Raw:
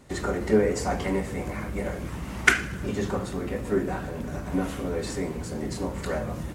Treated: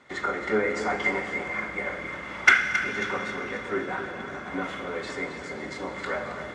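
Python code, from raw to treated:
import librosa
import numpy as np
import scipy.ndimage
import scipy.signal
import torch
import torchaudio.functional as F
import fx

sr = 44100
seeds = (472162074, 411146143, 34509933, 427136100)

y = fx.highpass(x, sr, hz=560.0, slope=6)
y = fx.peak_eq(y, sr, hz=1400.0, db=7.5, octaves=0.84)
y = fx.small_body(y, sr, hz=(2100.0, 3400.0), ring_ms=60, db=17)
y = np.clip(10.0 ** (7.0 / 20.0) * y, -1.0, 1.0) / 10.0 ** (7.0 / 20.0)
y = fx.air_absorb(y, sr, metres=110.0)
y = fx.echo_feedback(y, sr, ms=271, feedback_pct=45, wet_db=-10.5)
y = fx.rev_schroeder(y, sr, rt60_s=3.8, comb_ms=29, drr_db=8.5)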